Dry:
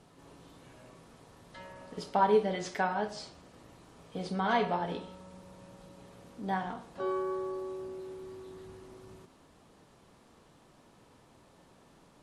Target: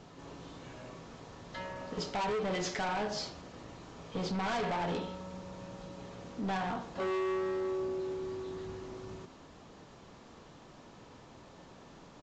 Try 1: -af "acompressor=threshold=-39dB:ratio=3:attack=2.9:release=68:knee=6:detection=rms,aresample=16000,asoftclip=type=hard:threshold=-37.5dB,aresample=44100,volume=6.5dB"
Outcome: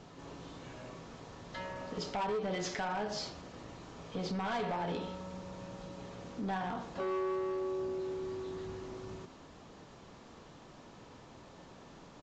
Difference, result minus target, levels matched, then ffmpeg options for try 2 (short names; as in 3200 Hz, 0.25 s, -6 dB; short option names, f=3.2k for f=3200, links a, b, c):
compressor: peak gain reduction +5.5 dB
-af "acompressor=threshold=-30.5dB:ratio=3:attack=2.9:release=68:knee=6:detection=rms,aresample=16000,asoftclip=type=hard:threshold=-37.5dB,aresample=44100,volume=6.5dB"